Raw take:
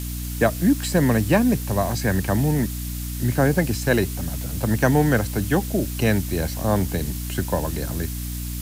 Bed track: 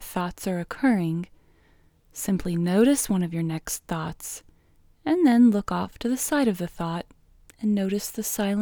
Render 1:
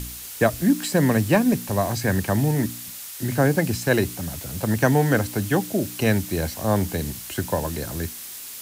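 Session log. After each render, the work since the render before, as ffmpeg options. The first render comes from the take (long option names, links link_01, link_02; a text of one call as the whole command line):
ffmpeg -i in.wav -af "bandreject=frequency=60:width_type=h:width=4,bandreject=frequency=120:width_type=h:width=4,bandreject=frequency=180:width_type=h:width=4,bandreject=frequency=240:width_type=h:width=4,bandreject=frequency=300:width_type=h:width=4" out.wav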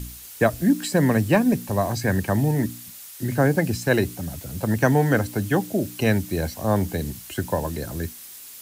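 ffmpeg -i in.wav -af "afftdn=noise_reduction=6:noise_floor=-37" out.wav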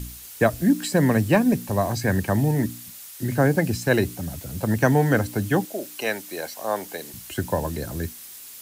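ffmpeg -i in.wav -filter_complex "[0:a]asettb=1/sr,asplit=3[link_01][link_02][link_03];[link_01]atrim=end=5.654[link_04];[link_02]atrim=start=5.65:end=7.14,asetpts=PTS-STARTPTS,afade=type=in:duration=0.004:curve=qsin,afade=type=out:start_time=1.486:duration=0.004:curve=qsin,highpass=510[link_05];[link_03]atrim=start=7.136[link_06];[link_04][link_05]acrossfade=duration=0.004:curve1=hsin:curve2=qsin[link_07];[link_07][link_06]acrossfade=duration=0.004:curve1=qsin:curve2=hsin" out.wav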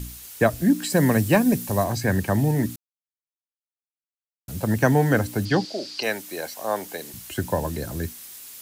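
ffmpeg -i in.wav -filter_complex "[0:a]asettb=1/sr,asplit=3[link_01][link_02][link_03];[link_01]atrim=end=0.904[link_04];[link_02]atrim=start=0.9:end=1.84,asetpts=PTS-STARTPTS,afade=type=in:duration=0.004:curve=qsin,afade=type=out:start_time=0.936:duration=0.004:curve=qsin,highshelf=frequency=5300:gain=6.5[link_05];[link_03]atrim=start=1.836[link_06];[link_04][link_05]acrossfade=duration=0.004:curve1=hsin:curve2=qsin[link_07];[link_07][link_06]acrossfade=duration=0.004:curve1=qsin:curve2=hsin,asettb=1/sr,asplit=3[link_08][link_09][link_10];[link_08]atrim=end=5.454[link_11];[link_09]atrim=start=5.45:end=6.03,asetpts=PTS-STARTPTS,afade=type=in:duration=0.004:curve=qsin,afade=type=out:start_time=0.576:duration=0.004:curve=qsin,lowpass=frequency=4700:width_type=q:width=10[link_12];[link_10]atrim=start=6.026[link_13];[link_11][link_12]acrossfade=duration=0.004:curve1=hsin:curve2=qsin[link_14];[link_14][link_13]acrossfade=duration=0.004:curve1=qsin:curve2=hsin,asplit=3[link_15][link_16][link_17];[link_15]atrim=end=2.76,asetpts=PTS-STARTPTS,afade=type=out:start_time=2.756:duration=0.004:curve=hsin[link_18];[link_16]atrim=start=2.76:end=4.48,asetpts=PTS-STARTPTS,volume=0[link_19];[link_17]atrim=start=4.48,asetpts=PTS-STARTPTS,afade=type=in:duration=0.004:curve=hsin[link_20];[link_18][link_19][link_20]concat=n=3:v=0:a=1" out.wav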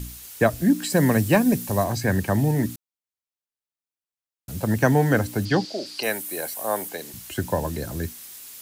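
ffmpeg -i in.wav -filter_complex "[0:a]asettb=1/sr,asplit=3[link_01][link_02][link_03];[link_01]atrim=end=5.864[link_04];[link_02]atrim=start=5.86:end=6.89,asetpts=PTS-STARTPTS,afade=type=in:duration=0.004:curve=qsin,afade=type=out:start_time=1.026:duration=0.004:curve=qsin,highshelf=frequency=7700:width_type=q:width=1.5:gain=7[link_05];[link_03]atrim=start=6.886[link_06];[link_04][link_05]acrossfade=duration=0.004:curve1=hsin:curve2=qsin[link_07];[link_07][link_06]acrossfade=duration=0.004:curve1=qsin:curve2=hsin" out.wav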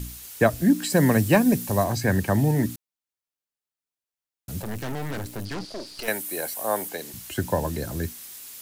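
ffmpeg -i in.wav -filter_complex "[0:a]asettb=1/sr,asplit=3[link_01][link_02][link_03];[link_01]atrim=end=4.624[link_04];[link_02]atrim=start=4.62:end=6.08,asetpts=PTS-STARTPTS,afade=type=in:duration=0.004:curve=qsin,afade=type=out:start_time=1.456:duration=0.004:curve=qsin,aeval=exprs='(tanh(31.6*val(0)+0.75)-tanh(0.75))/31.6':channel_layout=same[link_05];[link_03]atrim=start=6.076[link_06];[link_04][link_05]acrossfade=duration=0.004:curve1=hsin:curve2=qsin[link_07];[link_07][link_06]acrossfade=duration=0.004:curve1=qsin:curve2=hsin" out.wav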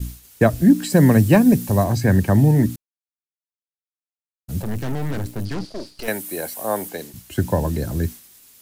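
ffmpeg -i in.wav -af "agate=range=-33dB:threshold=-34dB:ratio=3:detection=peak,lowshelf=frequency=390:gain=8.5" out.wav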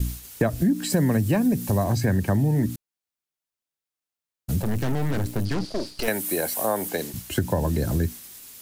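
ffmpeg -i in.wav -filter_complex "[0:a]asplit=2[link_01][link_02];[link_02]alimiter=limit=-11.5dB:level=0:latency=1,volume=-1dB[link_03];[link_01][link_03]amix=inputs=2:normalize=0,acompressor=threshold=-22dB:ratio=3" out.wav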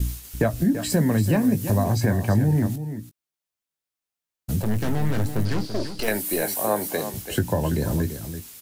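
ffmpeg -i in.wav -filter_complex "[0:a]asplit=2[link_01][link_02];[link_02]adelay=19,volume=-9.5dB[link_03];[link_01][link_03]amix=inputs=2:normalize=0,asplit=2[link_04][link_05];[link_05]aecho=0:1:336:0.299[link_06];[link_04][link_06]amix=inputs=2:normalize=0" out.wav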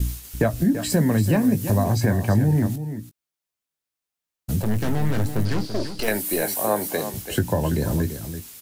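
ffmpeg -i in.wav -af "volume=1dB" out.wav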